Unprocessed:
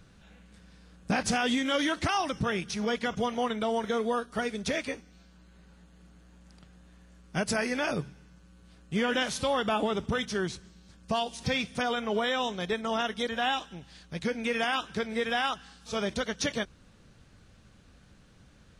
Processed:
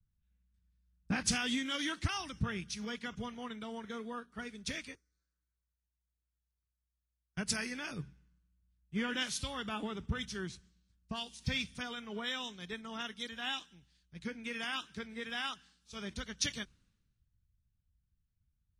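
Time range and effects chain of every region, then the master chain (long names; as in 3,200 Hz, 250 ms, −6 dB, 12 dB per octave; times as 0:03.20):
0:04.95–0:07.37: low-shelf EQ 62 Hz −12 dB + phaser with its sweep stopped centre 790 Hz, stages 6 + multiband upward and downward compressor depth 100%
whole clip: parametric band 620 Hz −12.5 dB 1.4 octaves; multiband upward and downward expander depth 100%; level −6.5 dB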